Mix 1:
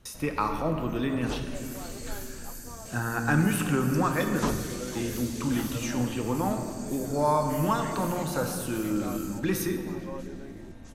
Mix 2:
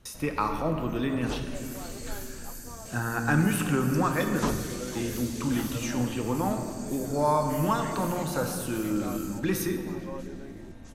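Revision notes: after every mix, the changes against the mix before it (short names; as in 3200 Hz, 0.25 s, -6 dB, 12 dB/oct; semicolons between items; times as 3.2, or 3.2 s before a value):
none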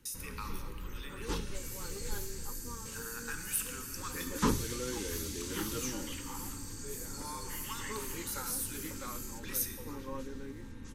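speech: add differentiator; master: add Butterworth band-stop 670 Hz, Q 2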